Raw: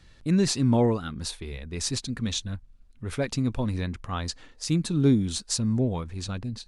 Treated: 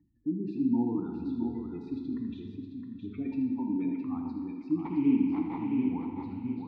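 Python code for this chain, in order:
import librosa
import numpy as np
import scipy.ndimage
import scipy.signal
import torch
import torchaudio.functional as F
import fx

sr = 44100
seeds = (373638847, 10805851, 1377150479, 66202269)

p1 = fx.highpass(x, sr, hz=190.0, slope=24, at=(3.54, 4.04), fade=0.02)
p2 = fx.spec_gate(p1, sr, threshold_db=-15, keep='strong')
p3 = fx.dynamic_eq(p2, sr, hz=260.0, q=2.4, threshold_db=-34.0, ratio=4.0, max_db=4)
p4 = fx.over_compress(p3, sr, threshold_db=-33.0, ratio=-1.0)
p5 = p3 + (p4 * 10.0 ** (1.5 / 20.0))
p6 = fx.sample_hold(p5, sr, seeds[0], rate_hz=2800.0, jitter_pct=20, at=(4.79, 5.9))
p7 = fx.vowel_filter(p6, sr, vowel='u')
p8 = fx.air_absorb(p7, sr, metres=490.0)
p9 = p8 + fx.echo_multitap(p8, sr, ms=(78, 665, 750), db=(-9.0, -6.5, -19.0), dry=0)
y = fx.rev_plate(p9, sr, seeds[1], rt60_s=1.7, hf_ratio=0.9, predelay_ms=0, drr_db=3.0)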